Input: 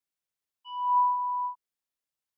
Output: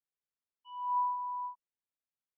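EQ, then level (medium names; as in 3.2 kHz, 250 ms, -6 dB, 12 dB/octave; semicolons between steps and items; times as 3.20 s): distance through air 330 m; -6.0 dB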